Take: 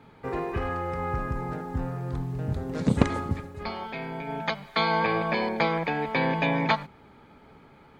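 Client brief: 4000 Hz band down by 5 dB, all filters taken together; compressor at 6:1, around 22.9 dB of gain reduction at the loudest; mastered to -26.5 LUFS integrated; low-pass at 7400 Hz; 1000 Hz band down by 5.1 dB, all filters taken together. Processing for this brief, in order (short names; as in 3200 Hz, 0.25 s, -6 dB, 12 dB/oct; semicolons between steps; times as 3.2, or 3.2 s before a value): LPF 7400 Hz; bell 1000 Hz -6 dB; bell 4000 Hz -5.5 dB; compressor 6:1, threshold -41 dBFS; gain +17.5 dB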